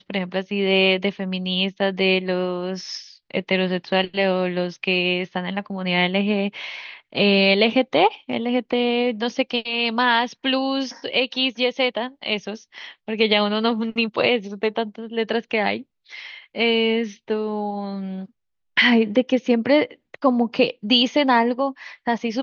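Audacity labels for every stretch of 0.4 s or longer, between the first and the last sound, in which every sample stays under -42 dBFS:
18.260000	18.770000	silence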